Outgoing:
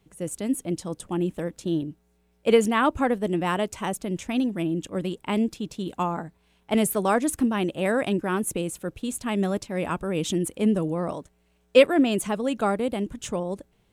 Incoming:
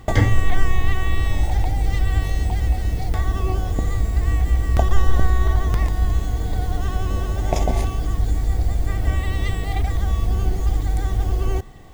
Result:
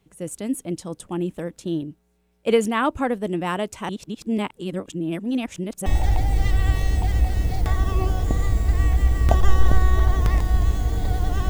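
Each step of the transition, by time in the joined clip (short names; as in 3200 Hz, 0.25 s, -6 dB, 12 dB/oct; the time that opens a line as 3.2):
outgoing
3.89–5.86 reverse
5.86 switch to incoming from 1.34 s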